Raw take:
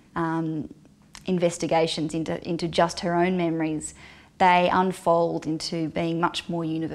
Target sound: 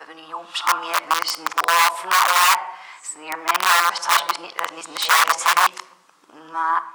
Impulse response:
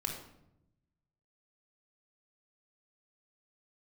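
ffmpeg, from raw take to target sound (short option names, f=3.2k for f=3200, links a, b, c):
-filter_complex "[0:a]areverse,asplit=2[a][b];[1:a]atrim=start_sample=2205,asetrate=43218,aresample=44100[c];[b][c]afir=irnorm=-1:irlink=0,volume=-9dB[d];[a][d]amix=inputs=2:normalize=0,dynaudnorm=f=150:g=11:m=9dB,aeval=exprs='(mod(3.98*val(0)+1,2)-1)/3.98':c=same,highpass=f=1.1k:t=q:w=4.2,volume=-1dB"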